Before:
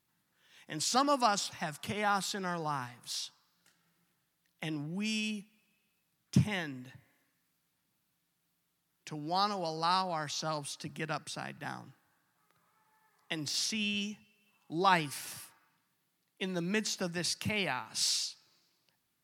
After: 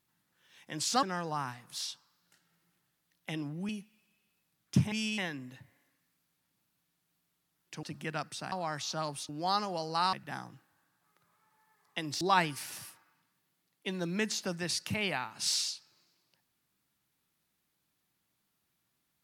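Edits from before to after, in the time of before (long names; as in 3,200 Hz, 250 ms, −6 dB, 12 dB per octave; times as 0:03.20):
0:01.03–0:02.37: remove
0:05.03–0:05.29: move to 0:06.52
0:09.17–0:10.01: swap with 0:10.78–0:11.47
0:13.55–0:14.76: remove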